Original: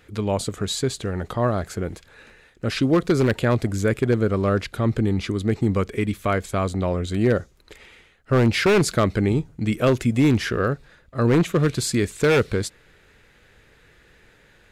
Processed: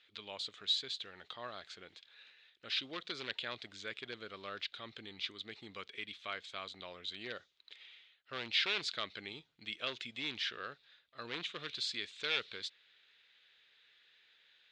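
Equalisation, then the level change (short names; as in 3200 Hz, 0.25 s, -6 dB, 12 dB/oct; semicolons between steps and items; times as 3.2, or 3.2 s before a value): band-pass 3600 Hz, Q 3.5; air absorption 110 m; +2.0 dB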